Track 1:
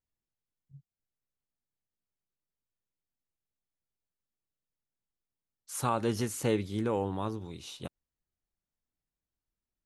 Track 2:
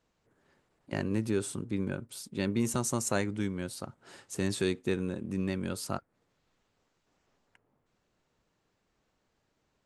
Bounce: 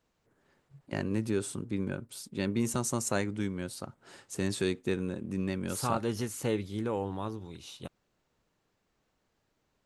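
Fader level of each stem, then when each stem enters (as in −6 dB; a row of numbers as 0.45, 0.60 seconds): −2.0, −0.5 decibels; 0.00, 0.00 seconds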